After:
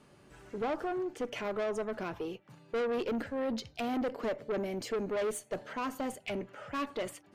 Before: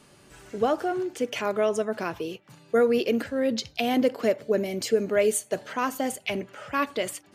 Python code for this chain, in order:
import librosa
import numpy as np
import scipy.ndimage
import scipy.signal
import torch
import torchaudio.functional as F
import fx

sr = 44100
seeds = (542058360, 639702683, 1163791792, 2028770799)

y = fx.high_shelf(x, sr, hz=2900.0, db=-10.0)
y = fx.tube_stage(y, sr, drive_db=26.0, bias=0.25)
y = F.gain(torch.from_numpy(y), -3.0).numpy()